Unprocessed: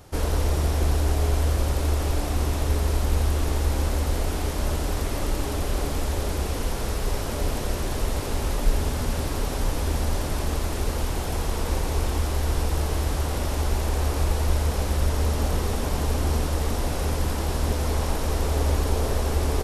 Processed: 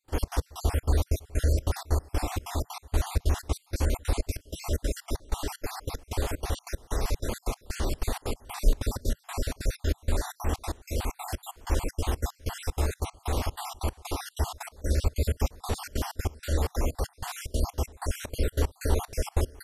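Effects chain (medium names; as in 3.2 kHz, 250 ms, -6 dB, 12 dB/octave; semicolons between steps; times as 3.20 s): random holes in the spectrogram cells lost 49%; trance gate ".xx.x..xxx" 189 bpm -24 dB; peaking EQ 160 Hz -14 dB 0.26 oct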